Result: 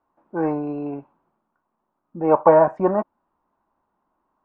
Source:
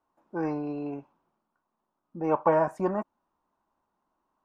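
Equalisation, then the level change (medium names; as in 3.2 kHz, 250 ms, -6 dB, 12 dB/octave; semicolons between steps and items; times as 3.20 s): dynamic bell 590 Hz, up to +5 dB, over -33 dBFS, Q 1; low-pass 2.1 kHz 12 dB/octave; +5.5 dB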